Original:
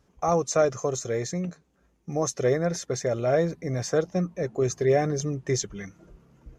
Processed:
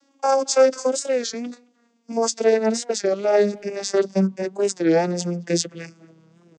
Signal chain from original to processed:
vocoder with a gliding carrier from C#4, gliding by −10 semitones
high-pass filter 240 Hz 12 dB per octave
parametric band 5,300 Hz +15 dB 2.4 octaves
far-end echo of a speakerphone 220 ms, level −25 dB
wow of a warped record 33 1/3 rpm, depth 160 cents
level +6 dB

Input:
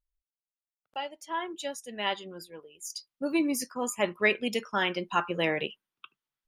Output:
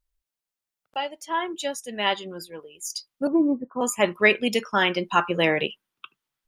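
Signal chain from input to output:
0:03.27–0:03.81: Butterworth low-pass 1,100 Hz 36 dB per octave
level +6.5 dB

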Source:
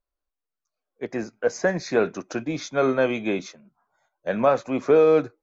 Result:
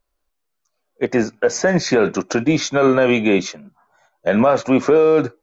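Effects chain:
boost into a limiter +17 dB
level −5 dB

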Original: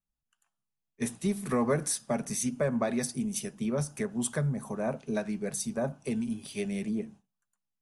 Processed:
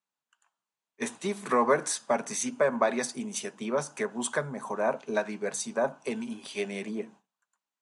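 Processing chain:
loudspeaker in its box 370–8,000 Hz, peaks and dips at 980 Hz +7 dB, 1,500 Hz +3 dB, 5,300 Hz −5 dB
level +5 dB

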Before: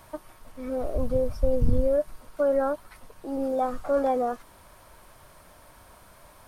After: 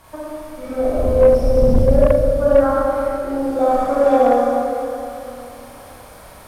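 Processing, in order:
four-comb reverb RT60 3 s, combs from 29 ms, DRR −9.5 dB
harmonic generator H 5 −17 dB, 7 −23 dB, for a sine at −0.5 dBFS
highs frequency-modulated by the lows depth 0.19 ms

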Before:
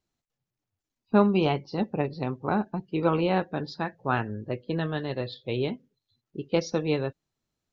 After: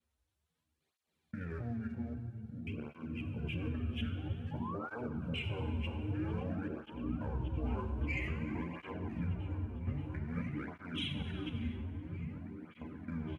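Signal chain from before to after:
slices reordered back to front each 154 ms, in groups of 5
high-pass filter 47 Hz 6 dB per octave
comb filter 7.5 ms, depth 70%
compressor whose output falls as the input rises −35 dBFS, ratio −1
leveller curve on the samples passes 1
brickwall limiter −27 dBFS, peak gain reduction 9.5 dB
sound drawn into the spectrogram rise, 0:02.60–0:02.86, 1,400–2,800 Hz −40 dBFS
echo whose low-pass opens from repeat to repeat 334 ms, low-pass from 400 Hz, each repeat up 1 octave, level −3 dB
reverb whose tail is shaped and stops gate 430 ms falling, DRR 6.5 dB
wrong playback speed 78 rpm record played at 45 rpm
through-zero flanger with one copy inverted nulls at 0.51 Hz, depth 6.8 ms
level −2.5 dB

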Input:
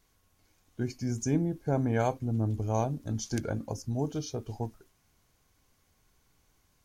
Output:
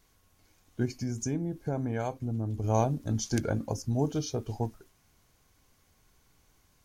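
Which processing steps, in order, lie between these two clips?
0:00.85–0:02.64: downward compressor 2.5 to 1, threshold −34 dBFS, peak gain reduction 8.5 dB
level +3 dB

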